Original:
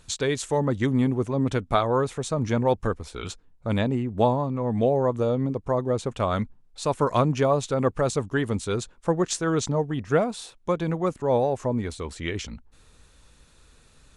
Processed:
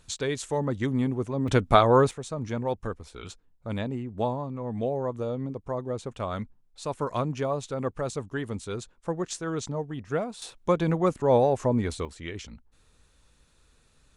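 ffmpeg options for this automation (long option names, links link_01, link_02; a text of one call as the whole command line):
ffmpeg -i in.wav -af "asetnsamples=nb_out_samples=441:pad=0,asendcmd='1.48 volume volume 4dB;2.11 volume volume -7dB;10.42 volume volume 1.5dB;12.05 volume volume -7dB',volume=-4dB" out.wav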